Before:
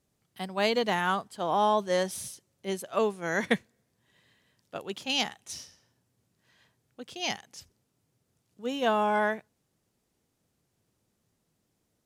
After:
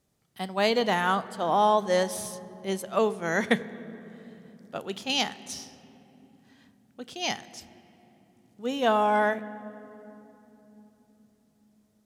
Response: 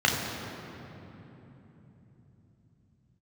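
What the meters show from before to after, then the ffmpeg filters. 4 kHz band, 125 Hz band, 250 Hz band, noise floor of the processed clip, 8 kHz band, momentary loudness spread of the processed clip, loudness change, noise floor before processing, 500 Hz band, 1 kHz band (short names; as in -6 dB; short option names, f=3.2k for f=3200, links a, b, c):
+1.5 dB, +3.0 dB, +3.0 dB, -67 dBFS, +2.0 dB, 21 LU, +2.0 dB, -77 dBFS, +3.0 dB, +3.0 dB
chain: -filter_complex "[0:a]asplit=2[a][b];[1:a]atrim=start_sample=2205[c];[b][c]afir=irnorm=-1:irlink=0,volume=-28.5dB[d];[a][d]amix=inputs=2:normalize=0,volume=2dB"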